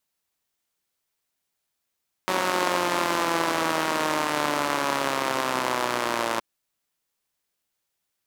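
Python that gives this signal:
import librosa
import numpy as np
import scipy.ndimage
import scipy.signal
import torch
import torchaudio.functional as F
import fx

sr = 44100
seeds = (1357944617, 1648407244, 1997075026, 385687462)

y = fx.engine_four_rev(sr, seeds[0], length_s=4.12, rpm=5600, resonances_hz=(340.0, 580.0, 940.0), end_rpm=3400)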